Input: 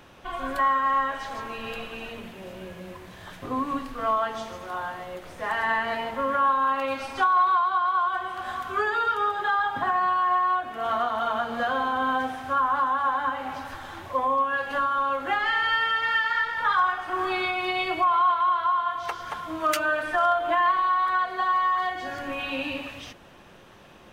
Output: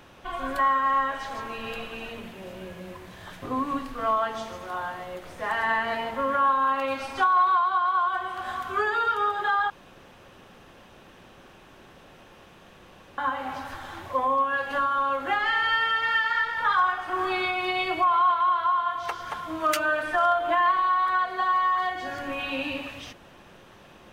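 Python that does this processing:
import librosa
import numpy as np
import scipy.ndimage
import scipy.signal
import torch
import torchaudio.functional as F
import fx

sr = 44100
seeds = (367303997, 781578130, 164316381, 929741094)

y = fx.edit(x, sr, fx.room_tone_fill(start_s=9.7, length_s=3.48), tone=tone)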